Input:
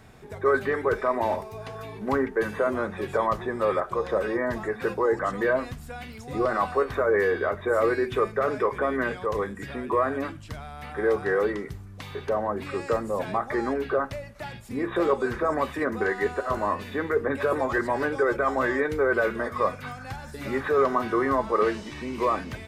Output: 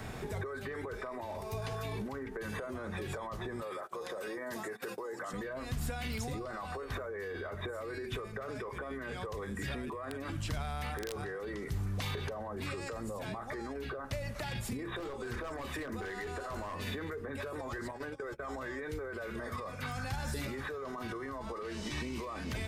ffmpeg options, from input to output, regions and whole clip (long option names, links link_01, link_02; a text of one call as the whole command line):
ffmpeg -i in.wav -filter_complex "[0:a]asettb=1/sr,asplit=3[link_01][link_02][link_03];[link_01]atrim=end=3.624[link_04];[link_02]atrim=start=3.62:end=5.33,asetpts=PTS-STARTPTS,afade=type=in:duration=0.004:curve=qsin,afade=type=out:start_time=1.706:duration=0.004:curve=qsin,agate=range=-19dB:threshold=-36dB:ratio=16:release=100:detection=peak,highpass=240,highshelf=frequency=7100:gain=10.5[link_05];[link_03]atrim=start=5.326[link_06];[link_04][link_05]acrossfade=duration=0.004:curve1=hsin:curve2=qsin[link_07];[link_07][link_06]acrossfade=duration=0.004:curve1=qsin:curve2=hsin,asettb=1/sr,asplit=3[link_08][link_09][link_10];[link_08]atrim=end=10.114[link_11];[link_09]atrim=start=10.11:end=11.24,asetpts=PTS-STARTPTS,afade=type=in:duration=0.004:curve=qsin,afade=type=out:start_time=1.126:duration=0.004:curve=qsin,acompressor=threshold=-29dB:ratio=3:attack=3.2:release=140:knee=1:detection=peak,aeval=exprs='(mod(12.6*val(0)+1,2)-1)/12.6':channel_layout=same[link_12];[link_10]atrim=start=11.236[link_13];[link_11][link_12]acrossfade=duration=0.004:curve1=hsin:curve2=qsin[link_14];[link_14][link_13]acrossfade=duration=0.004:curve1=qsin:curve2=hsin,asettb=1/sr,asplit=3[link_15][link_16][link_17];[link_15]atrim=end=14.974[link_18];[link_16]atrim=start=14.97:end=16.88,asetpts=PTS-STARTPTS,afade=type=in:duration=0.004:curve=qsin,afade=type=out:start_time=1.906:duration=0.004:curve=qsin,bandreject=frequency=50:width_type=h:width=6,bandreject=frequency=100:width_type=h:width=6,bandreject=frequency=150:width_type=h:width=6,bandreject=frequency=200:width_type=h:width=6,bandreject=frequency=250:width_type=h:width=6,bandreject=frequency=300:width_type=h:width=6,bandreject=frequency=350:width_type=h:width=6,bandreject=frequency=400:width_type=h:width=6,aeval=exprs='clip(val(0),-1,0.0794)':channel_layout=same[link_19];[link_17]atrim=start=16.876[link_20];[link_18][link_19]acrossfade=duration=0.004:curve1=hsin:curve2=qsin[link_21];[link_21][link_20]acrossfade=duration=0.004:curve1=qsin:curve2=hsin,asettb=1/sr,asplit=3[link_22][link_23][link_24];[link_22]atrim=end=17.914[link_25];[link_23]atrim=start=17.91:end=18.47,asetpts=PTS-STARTPTS,afade=type=in:duration=0.004:curve=qsin,afade=type=out:start_time=0.556:duration=0.004:curve=qsin,agate=range=-31dB:threshold=-28dB:ratio=16:release=100:detection=peak,acompressor=threshold=-36dB:ratio=4:attack=3.2:release=140:knee=1:detection=peak[link_26];[link_24]atrim=start=18.466[link_27];[link_25][link_26]acrossfade=duration=0.004:curve1=hsin:curve2=qsin[link_28];[link_28][link_27]acrossfade=duration=0.004:curve1=qsin:curve2=hsin,acompressor=threshold=-34dB:ratio=6,alimiter=level_in=10.5dB:limit=-24dB:level=0:latency=1:release=11,volume=-10.5dB,acrossover=split=130|3000[link_29][link_30][link_31];[link_30]acompressor=threshold=-47dB:ratio=6[link_32];[link_29][link_32][link_31]amix=inputs=3:normalize=0,volume=8.5dB" out.wav